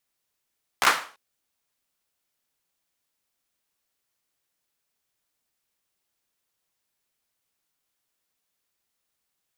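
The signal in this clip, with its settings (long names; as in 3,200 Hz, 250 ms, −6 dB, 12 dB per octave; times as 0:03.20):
synth clap length 0.34 s, bursts 4, apart 15 ms, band 1,200 Hz, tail 0.39 s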